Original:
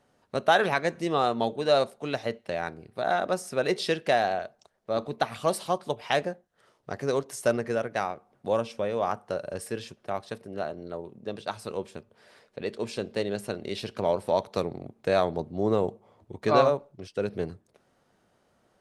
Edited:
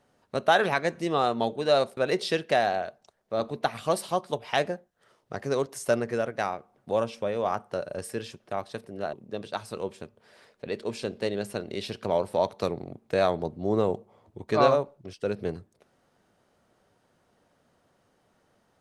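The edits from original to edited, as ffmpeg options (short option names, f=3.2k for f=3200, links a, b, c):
-filter_complex "[0:a]asplit=3[a][b][c];[a]atrim=end=1.972[d];[b]atrim=start=3.538:end=10.702[e];[c]atrim=start=11.068[f];[d][e]acrossfade=d=0.004:c1=hsin:c2=hsin[g];[g][f]acrossfade=d=0.004:c1=hsin:c2=hsin"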